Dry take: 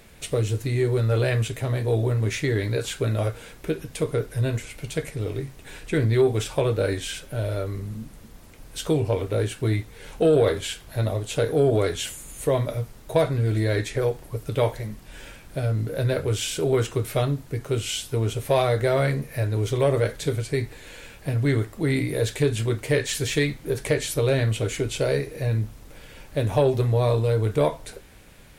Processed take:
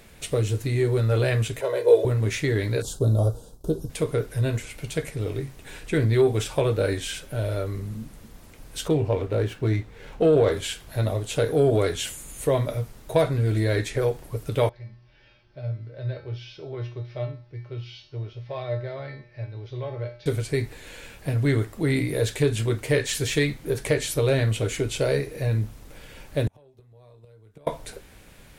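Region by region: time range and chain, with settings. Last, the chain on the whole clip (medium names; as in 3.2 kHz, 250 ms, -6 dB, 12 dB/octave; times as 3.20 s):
1.61–2.05 s: resonant high-pass 470 Hz, resonance Q 1.9 + comb 2 ms, depth 75% + tape noise reduction on one side only decoder only
2.82–3.90 s: expander -39 dBFS + Butterworth band-stop 2.1 kHz, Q 0.6 + bass shelf 130 Hz +8 dB
8.88–10.52 s: low-pass 2.8 kHz 6 dB/octave + sliding maximum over 3 samples
14.69–20.26 s: dynamic bell 600 Hz, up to +5 dB, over -35 dBFS, Q 1.3 + elliptic low-pass 5.3 kHz + feedback comb 120 Hz, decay 0.41 s, harmonics odd, mix 90%
26.47–27.67 s: inverted gate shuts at -17 dBFS, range -35 dB + three bands compressed up and down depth 40%
whole clip: none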